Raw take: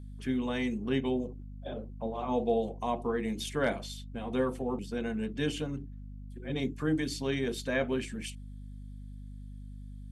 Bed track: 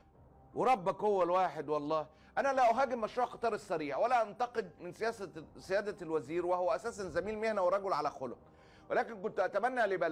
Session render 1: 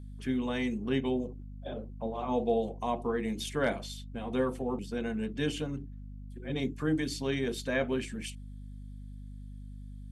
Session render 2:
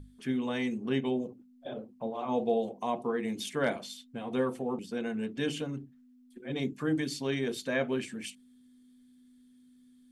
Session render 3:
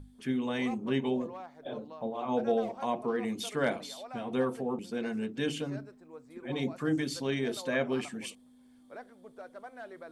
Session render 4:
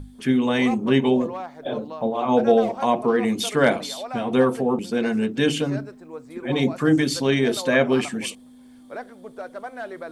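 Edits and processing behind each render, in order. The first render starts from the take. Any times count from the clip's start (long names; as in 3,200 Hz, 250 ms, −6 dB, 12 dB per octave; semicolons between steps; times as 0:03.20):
no processing that can be heard
mains-hum notches 50/100/150/200 Hz
mix in bed track −14 dB
level +11.5 dB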